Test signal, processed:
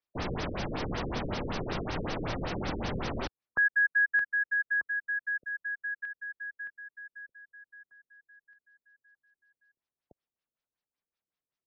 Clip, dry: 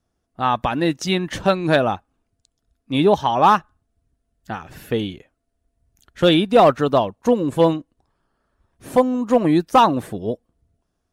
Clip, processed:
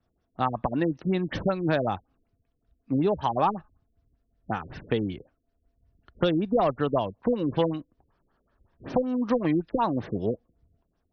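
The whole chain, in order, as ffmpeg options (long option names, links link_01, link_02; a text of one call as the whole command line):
ffmpeg -i in.wav -filter_complex "[0:a]acrossover=split=93|1200[link_01][link_02][link_03];[link_01]acompressor=threshold=-39dB:ratio=4[link_04];[link_02]acompressor=threshold=-23dB:ratio=4[link_05];[link_03]acompressor=threshold=-34dB:ratio=4[link_06];[link_04][link_05][link_06]amix=inputs=3:normalize=0,afftfilt=real='re*lt(b*sr/1024,520*pow(6400/520,0.5+0.5*sin(2*PI*5.3*pts/sr)))':imag='im*lt(b*sr/1024,520*pow(6400/520,0.5+0.5*sin(2*PI*5.3*pts/sr)))':win_size=1024:overlap=0.75" out.wav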